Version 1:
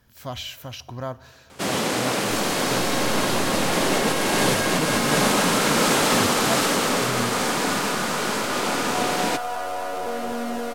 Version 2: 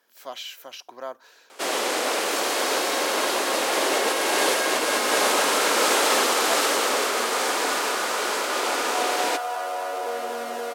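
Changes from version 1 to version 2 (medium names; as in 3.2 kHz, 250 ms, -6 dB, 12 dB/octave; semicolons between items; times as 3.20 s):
speech: send off; master: add high-pass 350 Hz 24 dB/octave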